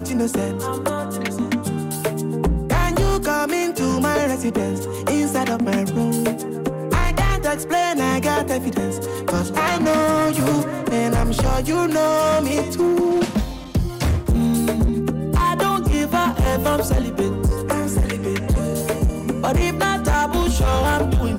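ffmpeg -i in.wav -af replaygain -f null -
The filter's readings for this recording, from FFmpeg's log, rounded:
track_gain = +2.6 dB
track_peak = 0.150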